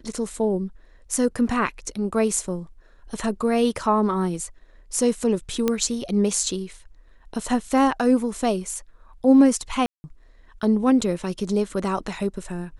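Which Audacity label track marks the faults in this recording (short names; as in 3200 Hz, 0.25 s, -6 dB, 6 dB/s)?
5.680000	5.680000	pop -8 dBFS
9.860000	10.040000	gap 0.18 s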